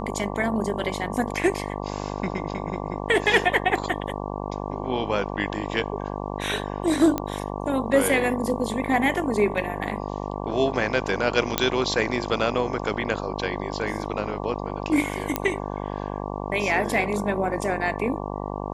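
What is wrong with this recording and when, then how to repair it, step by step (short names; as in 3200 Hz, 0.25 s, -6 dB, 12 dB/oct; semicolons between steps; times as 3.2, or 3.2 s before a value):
buzz 50 Hz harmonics 23 -31 dBFS
7.18 pop -11 dBFS
11.58 pop -2 dBFS
15.36 pop -7 dBFS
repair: de-click; de-hum 50 Hz, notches 23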